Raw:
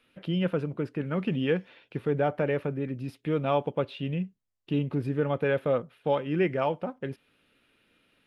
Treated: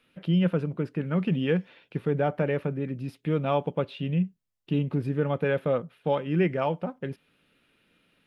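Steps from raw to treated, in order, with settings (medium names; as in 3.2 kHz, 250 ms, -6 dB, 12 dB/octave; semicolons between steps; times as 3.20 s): peaking EQ 170 Hz +7 dB 0.36 oct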